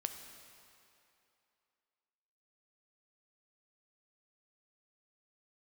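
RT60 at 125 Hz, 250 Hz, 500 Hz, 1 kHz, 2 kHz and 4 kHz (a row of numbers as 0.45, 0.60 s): 2.3, 2.5, 2.7, 2.9, 2.6, 2.4 s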